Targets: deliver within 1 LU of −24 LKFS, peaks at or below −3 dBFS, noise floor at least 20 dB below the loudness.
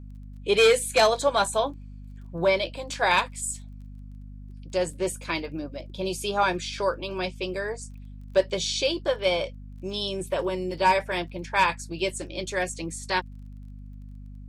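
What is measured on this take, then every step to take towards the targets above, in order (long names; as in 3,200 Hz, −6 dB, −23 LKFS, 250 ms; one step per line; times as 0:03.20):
crackle rate 21 per second; mains hum 50 Hz; hum harmonics up to 250 Hz; level of the hum −39 dBFS; integrated loudness −26.0 LKFS; sample peak −10.0 dBFS; target loudness −24.0 LKFS
→ click removal
mains-hum notches 50/100/150/200/250 Hz
level +2 dB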